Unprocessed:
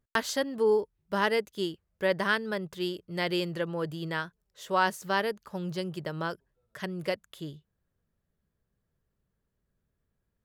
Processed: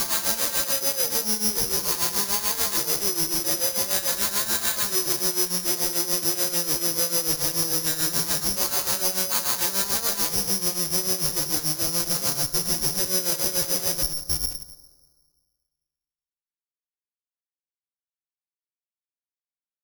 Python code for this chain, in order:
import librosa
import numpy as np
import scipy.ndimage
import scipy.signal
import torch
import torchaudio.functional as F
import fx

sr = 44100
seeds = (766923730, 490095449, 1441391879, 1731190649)

p1 = fx.spec_dilate(x, sr, span_ms=480)
p2 = scipy.signal.sosfilt(scipy.signal.butter(2, 9600.0, 'lowpass', fs=sr, output='sos'), p1)
p3 = fx.peak_eq(p2, sr, hz=1100.0, db=4.0, octaves=0.42)
p4 = p3 + 0.97 * np.pad(p3, (int(5.8 * sr / 1000.0), 0))[:len(p3)]
p5 = fx.schmitt(p4, sr, flips_db=-24.0)
p6 = p5 * (1.0 - 0.77 / 2.0 + 0.77 / 2.0 * np.cos(2.0 * np.pi * 13.0 * (np.arange(len(p5)) / sr)))
p7 = fx.stretch_vocoder(p6, sr, factor=1.9)
p8 = p7 + fx.echo_single(p7, sr, ms=174, db=-15.0, dry=0)
p9 = fx.rev_plate(p8, sr, seeds[0], rt60_s=1.7, hf_ratio=0.25, predelay_ms=0, drr_db=15.0)
p10 = (np.kron(p9[::8], np.eye(8)[0]) * 8)[:len(p9)]
y = p10 * librosa.db_to_amplitude(-9.0)